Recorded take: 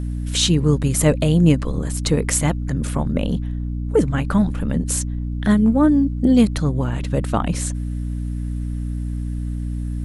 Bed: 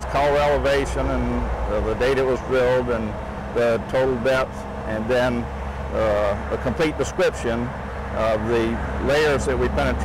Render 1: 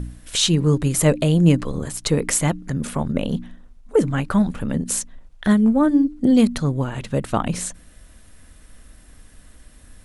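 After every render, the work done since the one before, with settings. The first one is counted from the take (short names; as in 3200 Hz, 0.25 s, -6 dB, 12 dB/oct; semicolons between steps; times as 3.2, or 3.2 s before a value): de-hum 60 Hz, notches 5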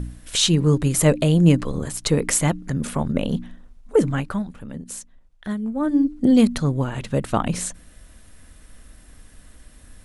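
4.09–6.07 dip -11 dB, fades 0.35 s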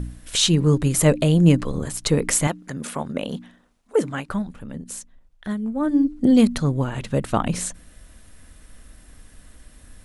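2.47–4.29 HPF 390 Hz 6 dB/oct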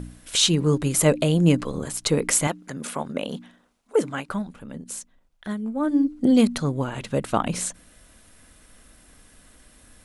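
low shelf 130 Hz -10.5 dB; notch 1800 Hz, Q 19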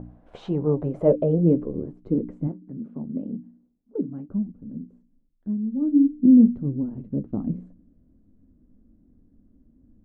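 low-pass sweep 760 Hz -> 260 Hz, 0.55–2.34; flange 1.8 Hz, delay 8.9 ms, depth 4.2 ms, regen -54%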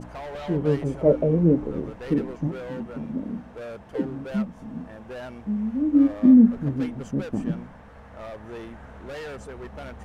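add bed -17.5 dB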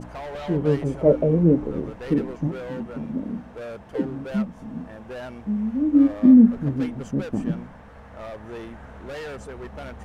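gain +1.5 dB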